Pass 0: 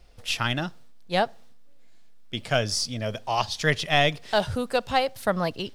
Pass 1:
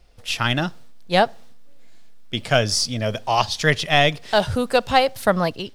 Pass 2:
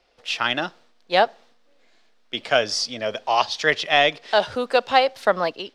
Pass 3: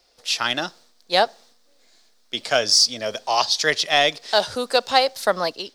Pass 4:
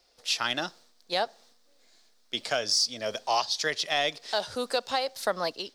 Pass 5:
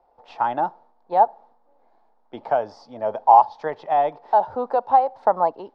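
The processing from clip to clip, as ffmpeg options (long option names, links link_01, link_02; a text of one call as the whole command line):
ffmpeg -i in.wav -af "dynaudnorm=framelen=160:gausssize=5:maxgain=7.5dB" out.wav
ffmpeg -i in.wav -filter_complex "[0:a]acrossover=split=280 6100:gain=0.0891 1 0.126[link_01][link_02][link_03];[link_01][link_02][link_03]amix=inputs=3:normalize=0" out.wav
ffmpeg -i in.wav -af "aexciter=amount=3.5:drive=6.6:freq=4000,volume=-1dB" out.wav
ffmpeg -i in.wav -af "alimiter=limit=-10.5dB:level=0:latency=1:release=290,volume=-4.5dB" out.wav
ffmpeg -i in.wav -af "lowpass=frequency=870:width_type=q:width=7.1,volume=2.5dB" out.wav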